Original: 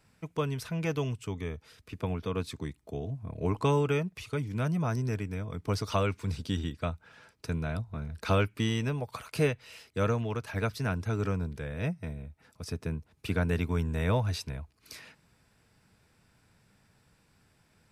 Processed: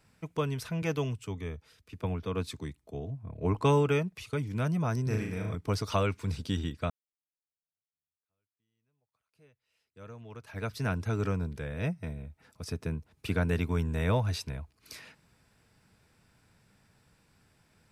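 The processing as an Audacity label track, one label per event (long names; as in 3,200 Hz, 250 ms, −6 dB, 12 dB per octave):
0.820000	4.330000	multiband upward and downward expander depth 40%
5.030000	5.550000	flutter between parallel walls apart 6.4 metres, dies away in 0.65 s
6.900000	10.830000	fade in exponential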